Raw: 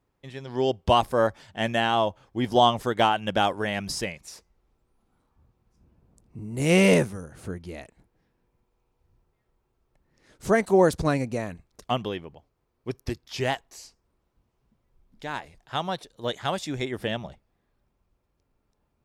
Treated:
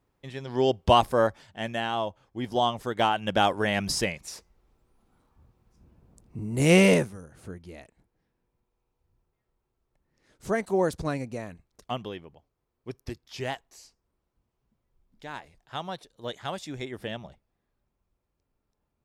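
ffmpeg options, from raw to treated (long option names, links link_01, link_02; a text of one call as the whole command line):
ffmpeg -i in.wav -af "volume=10dB,afade=type=out:start_time=1.05:duration=0.56:silence=0.446684,afade=type=in:start_time=2.79:duration=1.04:silence=0.354813,afade=type=out:start_time=6.62:duration=0.48:silence=0.354813" out.wav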